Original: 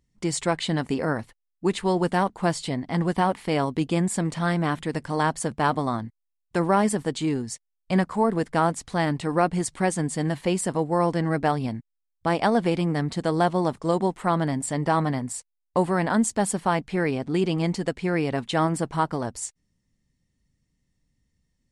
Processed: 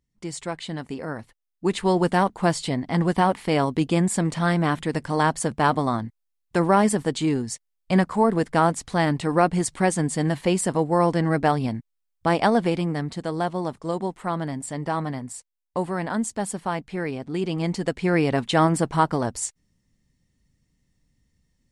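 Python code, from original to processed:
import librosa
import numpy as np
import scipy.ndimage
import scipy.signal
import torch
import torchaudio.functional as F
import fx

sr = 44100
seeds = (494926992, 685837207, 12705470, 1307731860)

y = fx.gain(x, sr, db=fx.line((1.07, -6.5), (1.86, 2.5), (12.42, 2.5), (13.26, -4.0), (17.31, -4.0), (18.15, 4.0)))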